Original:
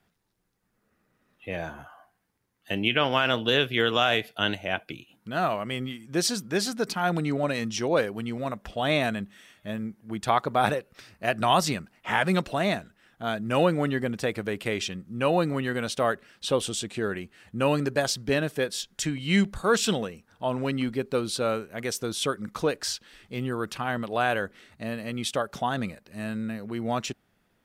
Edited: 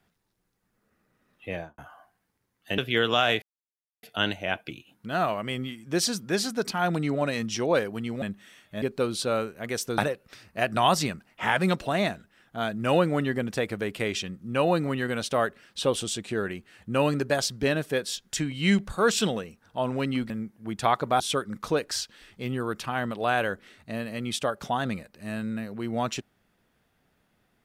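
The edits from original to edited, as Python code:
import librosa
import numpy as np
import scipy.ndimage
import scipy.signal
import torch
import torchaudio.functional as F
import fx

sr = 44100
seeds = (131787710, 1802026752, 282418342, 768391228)

y = fx.studio_fade_out(x, sr, start_s=1.51, length_s=0.27)
y = fx.edit(y, sr, fx.cut(start_s=2.78, length_s=0.83),
    fx.insert_silence(at_s=4.25, length_s=0.61),
    fx.cut(start_s=8.44, length_s=0.7),
    fx.swap(start_s=9.74, length_s=0.9, other_s=20.96, other_length_s=1.16), tone=tone)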